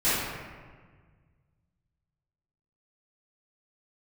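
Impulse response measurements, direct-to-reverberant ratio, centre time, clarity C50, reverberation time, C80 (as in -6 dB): -18.0 dB, 0.112 s, -3.5 dB, 1.6 s, 0.5 dB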